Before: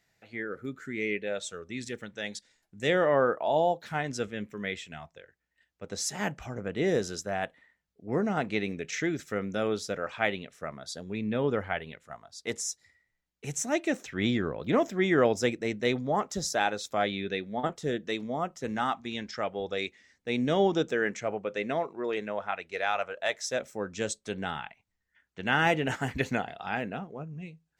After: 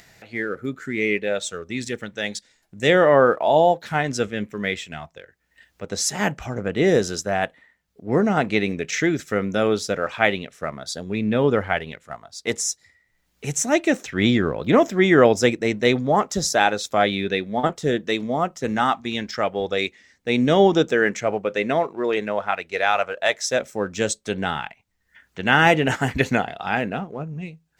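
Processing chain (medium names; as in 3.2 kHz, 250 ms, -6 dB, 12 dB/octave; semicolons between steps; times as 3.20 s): in parallel at -10.5 dB: crossover distortion -48 dBFS; on the sum: upward compressor, threshold -47 dBFS; trim +7 dB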